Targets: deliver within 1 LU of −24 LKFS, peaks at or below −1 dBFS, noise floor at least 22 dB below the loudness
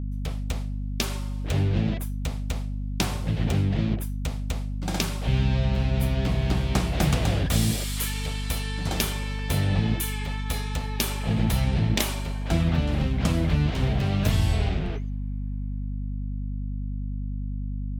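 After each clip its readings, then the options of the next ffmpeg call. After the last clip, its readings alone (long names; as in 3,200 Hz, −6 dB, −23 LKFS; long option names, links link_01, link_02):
mains hum 50 Hz; hum harmonics up to 250 Hz; level of the hum −27 dBFS; integrated loudness −27.0 LKFS; sample peak −8.5 dBFS; target loudness −24.0 LKFS
→ -af "bandreject=frequency=50:width_type=h:width=4,bandreject=frequency=100:width_type=h:width=4,bandreject=frequency=150:width_type=h:width=4,bandreject=frequency=200:width_type=h:width=4,bandreject=frequency=250:width_type=h:width=4"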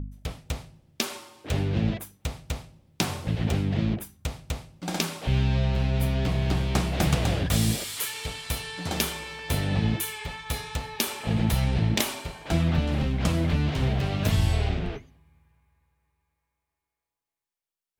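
mains hum none found; integrated loudness −27.5 LKFS; sample peak −9.5 dBFS; target loudness −24.0 LKFS
→ -af "volume=3.5dB"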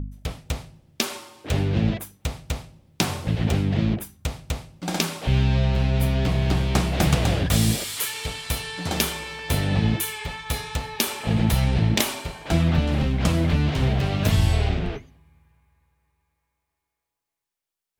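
integrated loudness −24.0 LKFS; sample peak −6.0 dBFS; background noise floor −84 dBFS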